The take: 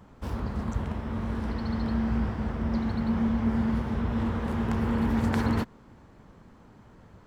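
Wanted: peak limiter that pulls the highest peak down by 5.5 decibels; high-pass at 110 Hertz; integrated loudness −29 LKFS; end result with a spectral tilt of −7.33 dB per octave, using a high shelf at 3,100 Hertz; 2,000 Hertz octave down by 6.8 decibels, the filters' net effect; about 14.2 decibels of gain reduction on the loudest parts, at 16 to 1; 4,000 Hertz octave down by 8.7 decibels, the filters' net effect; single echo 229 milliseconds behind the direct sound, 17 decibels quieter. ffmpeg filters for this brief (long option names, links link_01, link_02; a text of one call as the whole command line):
ffmpeg -i in.wav -af "highpass=110,equalizer=frequency=2000:width_type=o:gain=-7,highshelf=frequency=3100:gain=-3,equalizer=frequency=4000:width_type=o:gain=-6.5,acompressor=threshold=-37dB:ratio=16,alimiter=level_in=11dB:limit=-24dB:level=0:latency=1,volume=-11dB,aecho=1:1:229:0.141,volume=14.5dB" out.wav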